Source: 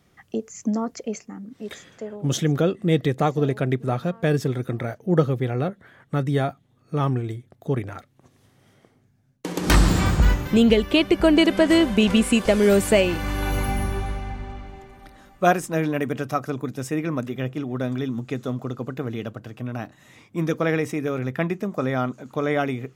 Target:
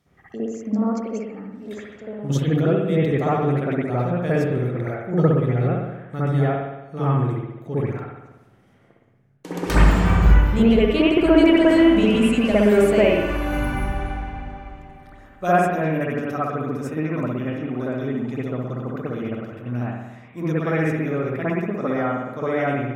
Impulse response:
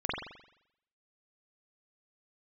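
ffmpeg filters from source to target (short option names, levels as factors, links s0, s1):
-filter_complex "[1:a]atrim=start_sample=2205,asetrate=33075,aresample=44100[s0];[0:a][s0]afir=irnorm=-1:irlink=0,volume=0.376"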